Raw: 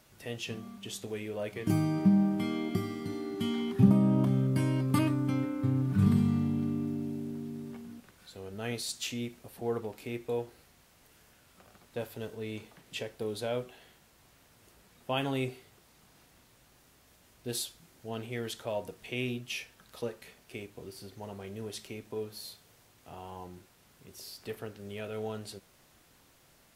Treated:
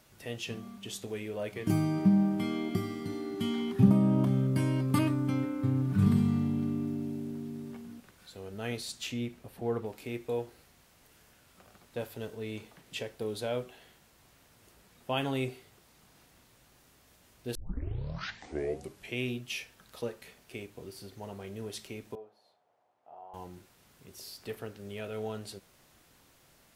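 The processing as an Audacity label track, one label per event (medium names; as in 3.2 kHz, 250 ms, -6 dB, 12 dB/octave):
8.770000	9.860000	tone controls bass +3 dB, treble -5 dB
17.550000	17.550000	tape start 1.62 s
22.150000	23.340000	band-pass filter 720 Hz, Q 3.2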